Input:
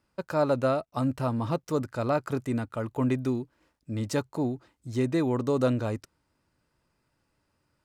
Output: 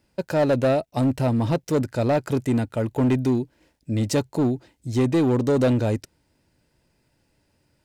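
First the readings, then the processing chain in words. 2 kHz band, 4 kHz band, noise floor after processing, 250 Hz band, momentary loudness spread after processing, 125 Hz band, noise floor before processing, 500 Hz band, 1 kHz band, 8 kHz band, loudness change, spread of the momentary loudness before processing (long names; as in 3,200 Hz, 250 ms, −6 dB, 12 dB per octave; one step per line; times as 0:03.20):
+5.0 dB, +6.5 dB, −69 dBFS, +6.5 dB, 7 LU, +7.0 dB, −76 dBFS, +5.5 dB, +3.0 dB, +7.5 dB, +6.0 dB, 8 LU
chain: parametric band 1,200 Hz −12.5 dB 0.52 octaves
in parallel at −5.5 dB: wave folding −25.5 dBFS
on the sum: level +4.5 dB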